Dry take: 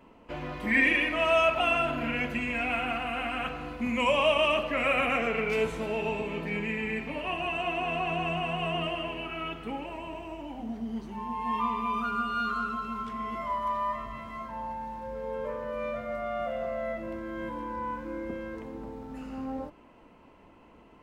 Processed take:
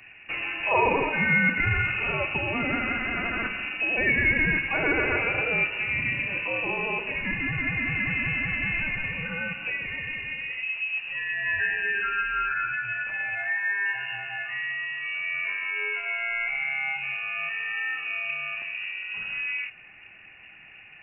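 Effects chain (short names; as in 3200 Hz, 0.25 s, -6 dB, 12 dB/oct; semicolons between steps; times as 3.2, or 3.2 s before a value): 12.46–13.86 HPF 98 Hz 24 dB/oct; in parallel at +1 dB: compressor, threshold -36 dBFS, peak gain reduction 16 dB; on the sum: inverted band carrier 2800 Hz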